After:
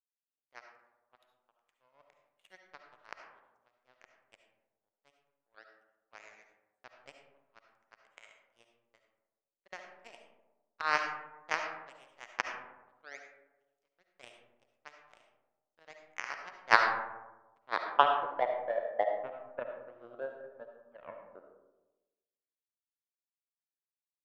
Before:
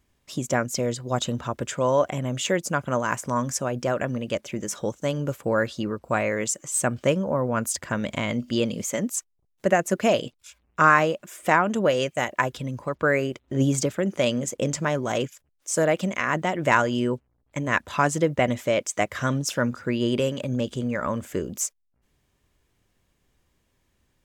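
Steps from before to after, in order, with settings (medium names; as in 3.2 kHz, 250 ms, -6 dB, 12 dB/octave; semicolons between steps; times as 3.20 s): band-pass sweep 2.3 kHz -> 620 Hz, 16.03–18.99 s; treble shelf 2.7 kHz -3.5 dB; in parallel at -11 dB: saturation -19 dBFS, distortion -15 dB; on the sum: power-law waveshaper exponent 3; peaking EQ 730 Hz +10.5 dB 2.8 oct; on a send at -3.5 dB: reverberation RT60 1.1 s, pre-delay 30 ms; on the sum: trim +1.5 dB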